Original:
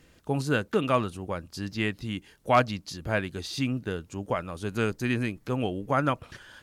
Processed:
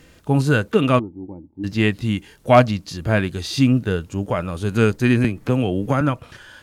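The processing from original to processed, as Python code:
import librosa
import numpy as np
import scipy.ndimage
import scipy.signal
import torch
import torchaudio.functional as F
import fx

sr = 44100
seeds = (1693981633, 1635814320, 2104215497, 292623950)

y = fx.rider(x, sr, range_db=10, speed_s=2.0)
y = fx.formant_cascade(y, sr, vowel='u', at=(0.99, 1.64))
y = fx.hpss(y, sr, part='harmonic', gain_db=9)
y = fx.band_squash(y, sr, depth_pct=100, at=(5.24, 6.01))
y = y * 10.0 ** (2.0 / 20.0)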